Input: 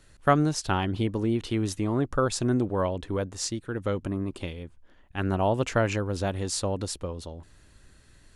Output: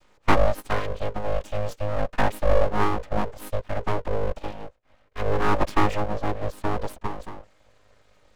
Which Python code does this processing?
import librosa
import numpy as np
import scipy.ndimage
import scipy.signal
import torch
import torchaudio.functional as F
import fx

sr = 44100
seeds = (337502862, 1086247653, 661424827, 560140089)

y = fx.chord_vocoder(x, sr, chord='major triad', root=56)
y = fx.low_shelf(y, sr, hz=490.0, db=-7.0, at=(0.79, 2.06))
y = fx.lowpass(y, sr, hz=2100.0, slope=6, at=(6.04, 6.64))
y = np.abs(y)
y = y * librosa.db_to_amplitude(8.0)